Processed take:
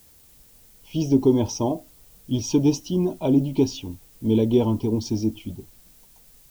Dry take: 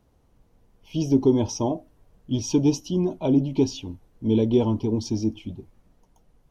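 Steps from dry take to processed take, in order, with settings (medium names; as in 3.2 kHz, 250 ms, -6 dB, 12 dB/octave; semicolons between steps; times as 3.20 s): added noise blue -55 dBFS; trim +1 dB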